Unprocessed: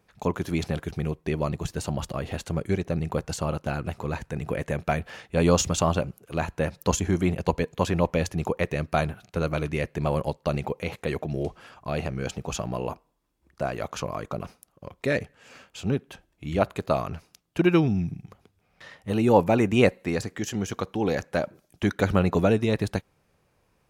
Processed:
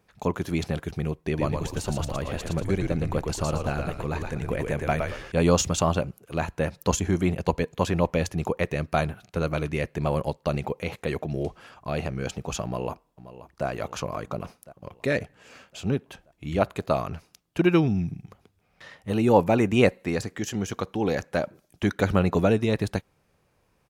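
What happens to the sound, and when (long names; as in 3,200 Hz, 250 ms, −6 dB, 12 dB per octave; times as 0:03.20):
0:01.22–0:05.32: echo with shifted repeats 114 ms, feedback 34%, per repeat −63 Hz, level −4 dB
0:12.64–0:13.66: delay throw 530 ms, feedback 60%, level −14.5 dB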